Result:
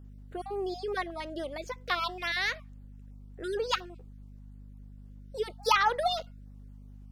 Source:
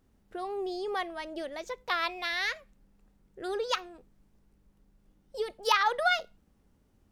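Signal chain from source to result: random spectral dropouts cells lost 21%; hum 50 Hz, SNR 14 dB; gain +1 dB

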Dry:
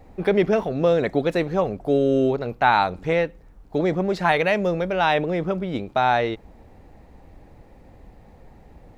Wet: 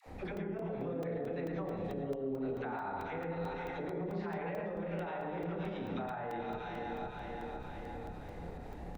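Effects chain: regenerating reverse delay 0.26 s, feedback 67%, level -13 dB; reverse bouncing-ball echo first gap 30 ms, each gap 1.15×, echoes 5; pump 119 bpm, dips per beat 1, -10 dB, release 0.103 s; treble ducked by the level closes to 1700 Hz, closed at -14.5 dBFS; dispersion lows, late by 67 ms, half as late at 580 Hz; limiter -23.5 dBFS, peak gain reduction 18.5 dB; compressor 3:1, threshold -45 dBFS, peak gain reduction 13.5 dB; reverb RT60 0.30 s, pre-delay 0.107 s, DRR 3.5 dB; crackling interface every 0.22 s, samples 128, zero, from 0.37; gain +1.5 dB

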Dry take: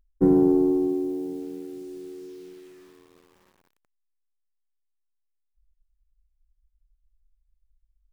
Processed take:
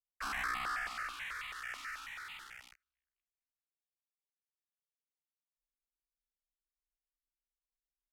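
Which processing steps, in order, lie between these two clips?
sample leveller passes 5; graphic EQ 125/250/500/1000 Hz -12/-6/-4/-8 dB; band-pass sweep 1500 Hz -> 510 Hz, 1.68–3.54; inverse Chebyshev band-stop 160–1000 Hz, stop band 50 dB; sample leveller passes 3; pitch shift -5 st; low shelf 400 Hz +11 dB; step phaser 9.2 Hz 440–1600 Hz; gain +3 dB

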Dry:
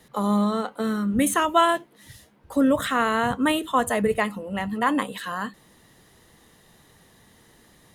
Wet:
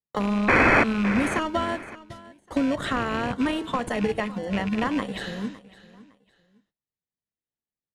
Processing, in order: rattling part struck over -29 dBFS, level -21 dBFS; spectral repair 5.26–5.64, 570–7700 Hz both; gate -44 dBFS, range -49 dB; high shelf 5000 Hz +4.5 dB; compressor, threshold -25 dBFS, peak gain reduction 12 dB; painted sound noise, 0.48–0.84, 220–2600 Hz -12 dBFS; in parallel at -6 dB: sample-and-hold 35×; on the sum: air absorption 87 m; on a send: feedback echo 0.559 s, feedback 26%, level -19 dB; on the sum: maximiser +9 dB; gain -7.5 dB

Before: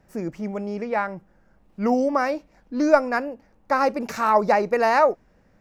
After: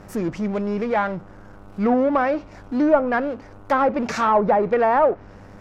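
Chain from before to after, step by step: power-law curve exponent 0.7; buzz 100 Hz, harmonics 15, -45 dBFS -4 dB/oct; treble ducked by the level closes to 1200 Hz, closed at -11 dBFS; gain -2 dB

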